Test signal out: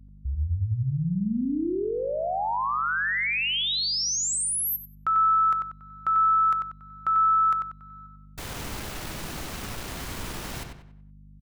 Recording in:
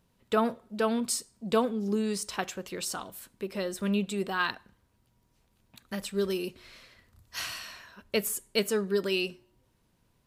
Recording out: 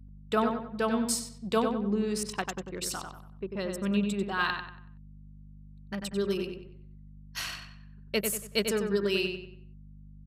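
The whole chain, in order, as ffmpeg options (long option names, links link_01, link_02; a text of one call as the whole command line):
ffmpeg -i in.wav -filter_complex "[0:a]anlmdn=1.58,equalizer=frequency=530:width_type=o:width=1:gain=-2.5,aeval=exprs='val(0)+0.00447*(sin(2*PI*50*n/s)+sin(2*PI*2*50*n/s)/2+sin(2*PI*3*50*n/s)/3+sin(2*PI*4*50*n/s)/4+sin(2*PI*5*50*n/s)/5)':channel_layout=same,asplit=2[link_01][link_02];[link_02]adelay=94,lowpass=frequency=3600:poles=1,volume=-5dB,asplit=2[link_03][link_04];[link_04]adelay=94,lowpass=frequency=3600:poles=1,volume=0.39,asplit=2[link_05][link_06];[link_06]adelay=94,lowpass=frequency=3600:poles=1,volume=0.39,asplit=2[link_07][link_08];[link_08]adelay=94,lowpass=frequency=3600:poles=1,volume=0.39,asplit=2[link_09][link_10];[link_10]adelay=94,lowpass=frequency=3600:poles=1,volume=0.39[link_11];[link_01][link_03][link_05][link_07][link_09][link_11]amix=inputs=6:normalize=0" out.wav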